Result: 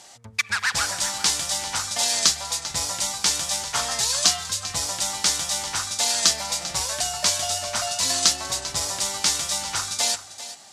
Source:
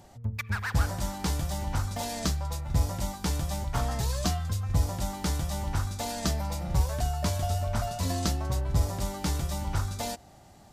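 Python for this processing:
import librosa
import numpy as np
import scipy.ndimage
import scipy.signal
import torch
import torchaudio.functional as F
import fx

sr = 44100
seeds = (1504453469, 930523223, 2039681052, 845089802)

p1 = fx.weighting(x, sr, curve='ITU-R 468')
p2 = p1 + fx.echo_single(p1, sr, ms=394, db=-14.0, dry=0)
y = p2 * librosa.db_to_amplitude(5.5)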